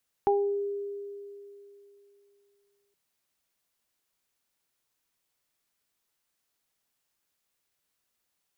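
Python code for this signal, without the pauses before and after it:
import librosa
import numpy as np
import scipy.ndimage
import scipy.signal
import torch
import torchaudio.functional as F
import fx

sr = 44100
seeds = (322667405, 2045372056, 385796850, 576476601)

y = fx.additive(sr, length_s=2.67, hz=403.0, level_db=-21.0, upper_db=(1,), decay_s=2.99, upper_decays_s=(0.38,))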